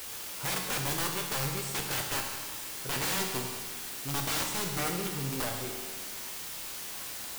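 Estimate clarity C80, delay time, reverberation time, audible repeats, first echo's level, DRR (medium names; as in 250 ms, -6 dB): 5.5 dB, no echo, 1.6 s, no echo, no echo, 2.0 dB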